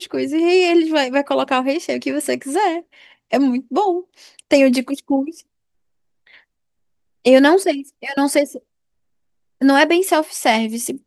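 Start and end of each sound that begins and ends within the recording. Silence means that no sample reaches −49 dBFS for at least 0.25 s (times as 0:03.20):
0:06.27–0:06.41
0:07.25–0:08.60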